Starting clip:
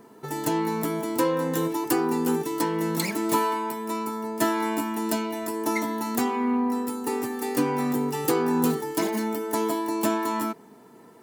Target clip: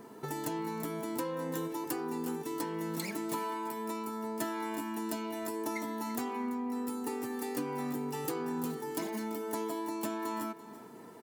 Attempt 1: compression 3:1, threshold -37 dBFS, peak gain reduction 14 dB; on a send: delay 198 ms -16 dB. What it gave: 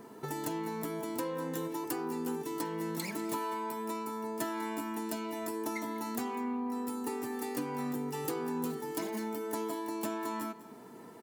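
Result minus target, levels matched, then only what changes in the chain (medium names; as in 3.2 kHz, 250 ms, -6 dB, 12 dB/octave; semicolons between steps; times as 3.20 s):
echo 139 ms early
change: delay 337 ms -16 dB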